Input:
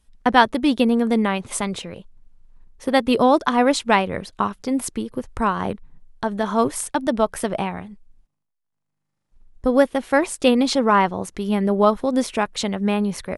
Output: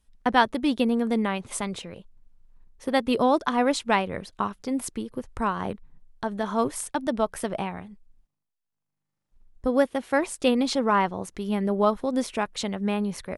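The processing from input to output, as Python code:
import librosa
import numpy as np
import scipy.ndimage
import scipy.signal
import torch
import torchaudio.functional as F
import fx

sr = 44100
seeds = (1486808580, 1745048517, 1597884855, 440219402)

y = fx.highpass(x, sr, hz=44.0, slope=12, at=(9.67, 10.2))
y = F.gain(torch.from_numpy(y), -5.5).numpy()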